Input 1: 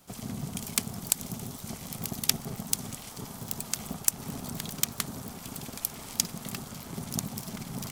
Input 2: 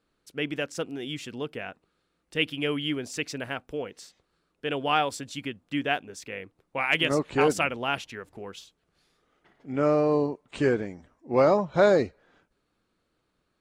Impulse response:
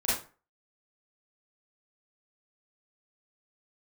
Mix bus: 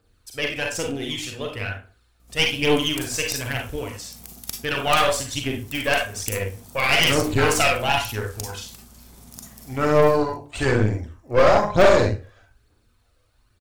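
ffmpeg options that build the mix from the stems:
-filter_complex "[0:a]aeval=exprs='val(0)+0.00562*(sin(2*PI*60*n/s)+sin(2*PI*2*60*n/s)/2+sin(2*PI*3*60*n/s)/3+sin(2*PI*4*60*n/s)/4+sin(2*PI*5*60*n/s)/5)':c=same,adelay=2200,volume=-14dB,asplit=3[a][b][c];[b]volume=-4.5dB[d];[c]volume=-21.5dB[e];[1:a]lowshelf=f=130:t=q:w=3:g=6.5,aphaser=in_gain=1:out_gain=1:delay=1.9:decay=0.6:speed=1.1:type=triangular,volume=2.5dB,asplit=2[f][g];[g]volume=-5.5dB[h];[2:a]atrim=start_sample=2205[i];[d][h]amix=inputs=2:normalize=0[j];[j][i]afir=irnorm=-1:irlink=0[k];[e]aecho=0:1:968|1936|2904|3872|4840|5808:1|0.45|0.202|0.0911|0.041|0.0185[l];[a][f][k][l]amix=inputs=4:normalize=0,highshelf=f=4.8k:g=9,aeval=exprs='(tanh(3.16*val(0)+0.75)-tanh(0.75))/3.16':c=same"

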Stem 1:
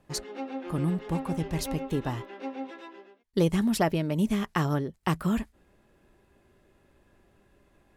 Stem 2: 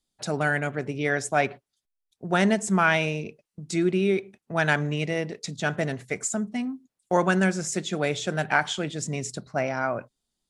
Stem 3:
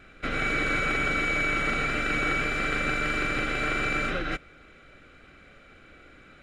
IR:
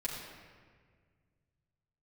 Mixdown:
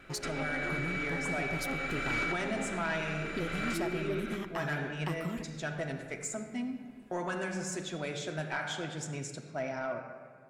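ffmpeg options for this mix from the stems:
-filter_complex "[0:a]volume=0dB,asplit=2[a][b];[b]volume=-22dB[c];[1:a]volume=-11.5dB,asplit=3[d][e][f];[e]volume=-3.5dB[g];[2:a]volume=-3dB,asplit=2[h][i];[i]volume=-16.5dB[j];[f]apad=whole_len=283341[k];[h][k]sidechaincompress=threshold=-44dB:ratio=8:attack=5.3:release=674[l];[a][d]amix=inputs=2:normalize=0,acompressor=threshold=-34dB:ratio=6,volume=0dB[m];[3:a]atrim=start_sample=2205[n];[c][g][j]amix=inputs=3:normalize=0[o];[o][n]afir=irnorm=-1:irlink=0[p];[l][m][p]amix=inputs=3:normalize=0,lowshelf=f=110:g=-5.5,asoftclip=type=tanh:threshold=-24.5dB"

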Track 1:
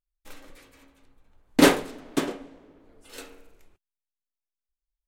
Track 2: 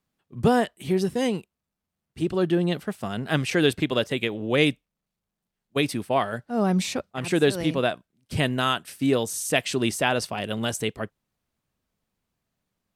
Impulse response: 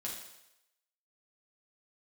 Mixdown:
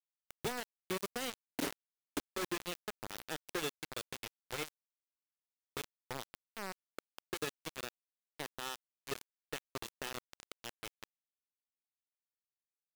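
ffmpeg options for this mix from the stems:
-filter_complex "[0:a]volume=-2dB[a];[1:a]aecho=1:1:2.3:0.64,volume=-11.5dB,afade=t=out:st=3.62:d=0.27:silence=0.473151,asplit=2[b][c];[c]apad=whole_len=223716[d];[a][d]sidechaincompress=threshold=-47dB:ratio=12:attack=16:release=592[e];[e][b]amix=inputs=2:normalize=0,acrossover=split=220|1800[f][g][h];[f]acompressor=threshold=-51dB:ratio=4[i];[g]acompressor=threshold=-40dB:ratio=4[j];[h]acompressor=threshold=-48dB:ratio=4[k];[i][j][k]amix=inputs=3:normalize=0,acrusher=bits=5:mix=0:aa=0.000001"

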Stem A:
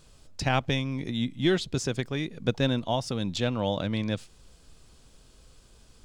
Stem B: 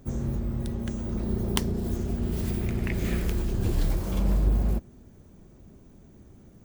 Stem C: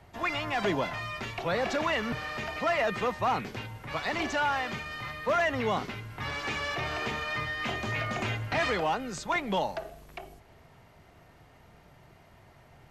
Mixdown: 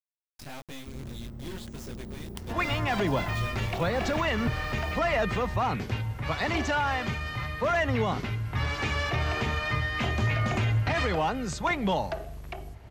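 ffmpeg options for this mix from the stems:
-filter_complex "[0:a]flanger=delay=18:depth=3.7:speed=1.5,aeval=exprs='(tanh(44.7*val(0)+0.75)-tanh(0.75))/44.7':c=same,acrusher=bits=6:mix=0:aa=0.000001,volume=-5dB[a];[1:a]acompressor=threshold=-25dB:ratio=6,adelay=800,volume=-10.5dB[b];[2:a]equalizer=f=71:t=o:w=2:g=13.5,adelay=2350,volume=2dB[c];[a][b][c]amix=inputs=3:normalize=0,alimiter=limit=-17.5dB:level=0:latency=1:release=88"

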